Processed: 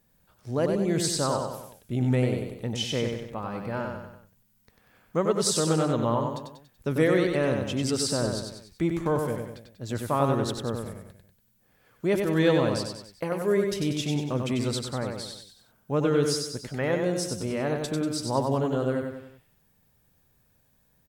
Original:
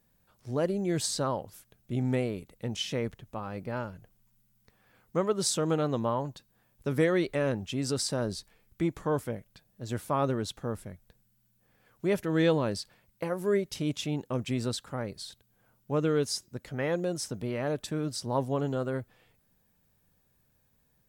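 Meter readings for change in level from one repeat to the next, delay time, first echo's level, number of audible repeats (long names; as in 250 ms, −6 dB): −6.5 dB, 95 ms, −4.5 dB, 4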